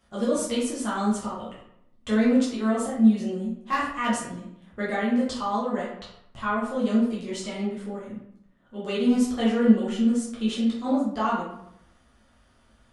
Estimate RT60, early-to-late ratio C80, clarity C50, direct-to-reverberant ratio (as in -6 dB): 0.75 s, 6.0 dB, 2.5 dB, -8.0 dB